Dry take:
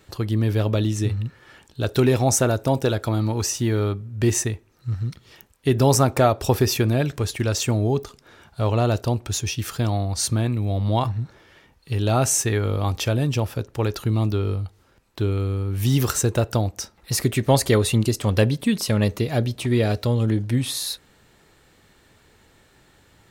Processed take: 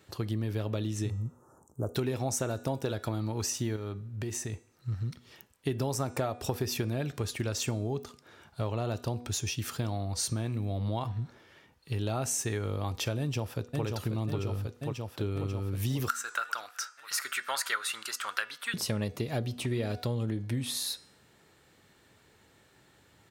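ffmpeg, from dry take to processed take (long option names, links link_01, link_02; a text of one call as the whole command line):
ffmpeg -i in.wav -filter_complex "[0:a]asettb=1/sr,asplit=3[link_01][link_02][link_03];[link_01]atrim=end=1.104[link_04];[link_02]atrim=start=1.1:end=1.95,asetpts=PTS-STARTPTS,afade=type=in:duration=0.004:curve=qsin,afade=type=out:start_time=0.846:duration=0.004:curve=qsin,asuperstop=centerf=2900:order=12:qfactor=0.57[link_05];[link_03]atrim=start=1.946[link_06];[link_04][link_05]acrossfade=duration=0.004:curve1=hsin:curve2=qsin[link_07];[link_07][link_06]acrossfade=duration=0.004:curve1=qsin:curve2=hsin,asettb=1/sr,asplit=3[link_08][link_09][link_10];[link_08]atrim=end=3.764[link_11];[link_09]atrim=start=3.76:end=4.53,asetpts=PTS-STARTPTS,afade=type=in:duration=0.004:curve=qsin,afade=type=out:start_time=0.766:duration=0.004:curve=qsin,acompressor=threshold=-26dB:ratio=6:attack=3.2:release=140:knee=1:detection=peak[link_12];[link_10]atrim=start=4.526[link_13];[link_11][link_12]acrossfade=duration=0.004:curve1=hsin:curve2=qsin[link_14];[link_14][link_13]acrossfade=duration=0.004:curve1=qsin:curve2=hsin,asplit=2[link_15][link_16];[link_16]afade=type=in:start_time=13.19:duration=0.01,afade=type=out:start_time=13.84:duration=0.01,aecho=0:1:540|1080|1620|2160|2700|3240|3780|4320|4860|5400|5940|6480:0.630957|0.473218|0.354914|0.266185|0.199639|0.149729|0.112297|0.0842226|0.063167|0.0473752|0.0355314|0.0266486[link_17];[link_15][link_17]amix=inputs=2:normalize=0,asettb=1/sr,asplit=3[link_18][link_19][link_20];[link_18]atrim=end=16.084[link_21];[link_19]atrim=start=16.08:end=18.74,asetpts=PTS-STARTPTS,afade=type=in:duration=0.004:curve=qsin,afade=type=out:start_time=2.656:duration=0.004:curve=qsin,highpass=frequency=1400:width_type=q:width=7.4[link_22];[link_20]atrim=start=18.736[link_23];[link_21][link_22]acrossfade=duration=0.004:curve1=hsin:curve2=qsin[link_24];[link_24][link_23]acrossfade=duration=0.004:curve1=qsin:curve2=hsin,highpass=79,bandreject=frequency=243.3:width_type=h:width=4,bandreject=frequency=486.6:width_type=h:width=4,bandreject=frequency=729.9:width_type=h:width=4,bandreject=frequency=973.2:width_type=h:width=4,bandreject=frequency=1216.5:width_type=h:width=4,bandreject=frequency=1459.8:width_type=h:width=4,bandreject=frequency=1703.1:width_type=h:width=4,bandreject=frequency=1946.4:width_type=h:width=4,bandreject=frequency=2189.7:width_type=h:width=4,bandreject=frequency=2433:width_type=h:width=4,bandreject=frequency=2676.3:width_type=h:width=4,bandreject=frequency=2919.6:width_type=h:width=4,bandreject=frequency=3162.9:width_type=h:width=4,bandreject=frequency=3406.2:width_type=h:width=4,bandreject=frequency=3649.5:width_type=h:width=4,bandreject=frequency=3892.8:width_type=h:width=4,bandreject=frequency=4136.1:width_type=h:width=4,bandreject=frequency=4379.4:width_type=h:width=4,bandreject=frequency=4622.7:width_type=h:width=4,bandreject=frequency=4866:width_type=h:width=4,bandreject=frequency=5109.3:width_type=h:width=4,bandreject=frequency=5352.6:width_type=h:width=4,bandreject=frequency=5595.9:width_type=h:width=4,bandreject=frequency=5839.2:width_type=h:width=4,bandreject=frequency=6082.5:width_type=h:width=4,bandreject=frequency=6325.8:width_type=h:width=4,bandreject=frequency=6569.1:width_type=h:width=4,bandreject=frequency=6812.4:width_type=h:width=4,bandreject=frequency=7055.7:width_type=h:width=4,bandreject=frequency=7299:width_type=h:width=4,bandreject=frequency=7542.3:width_type=h:width=4,bandreject=frequency=7785.6:width_type=h:width=4,bandreject=frequency=8028.9:width_type=h:width=4,bandreject=frequency=8272.2:width_type=h:width=4,bandreject=frequency=8515.5:width_type=h:width=4,bandreject=frequency=8758.8:width_type=h:width=4,bandreject=frequency=9002.1:width_type=h:width=4,bandreject=frequency=9245.4:width_type=h:width=4,bandreject=frequency=9488.7:width_type=h:width=4,acompressor=threshold=-22dB:ratio=6,volume=-5.5dB" out.wav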